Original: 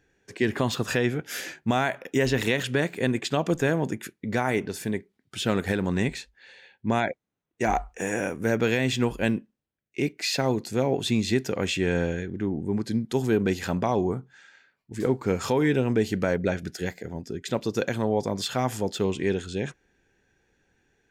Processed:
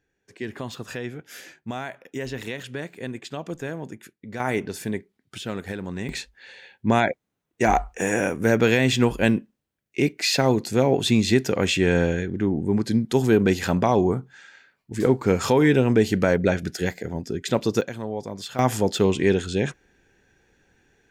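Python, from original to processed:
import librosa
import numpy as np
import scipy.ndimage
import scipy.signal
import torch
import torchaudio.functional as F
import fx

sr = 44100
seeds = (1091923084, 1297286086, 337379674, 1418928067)

y = fx.gain(x, sr, db=fx.steps((0.0, -8.0), (4.4, 0.5), (5.38, -6.0), (6.09, 5.0), (17.81, -5.5), (18.59, 6.0)))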